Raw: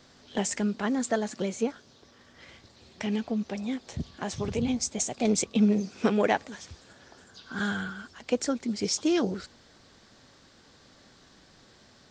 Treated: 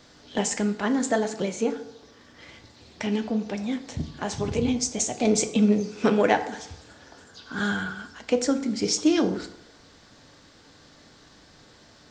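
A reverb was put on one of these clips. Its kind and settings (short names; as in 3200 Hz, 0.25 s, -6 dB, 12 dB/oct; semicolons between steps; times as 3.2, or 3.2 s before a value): FDN reverb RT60 0.81 s, low-frequency decay 0.9×, high-frequency decay 0.6×, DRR 7 dB; gain +3 dB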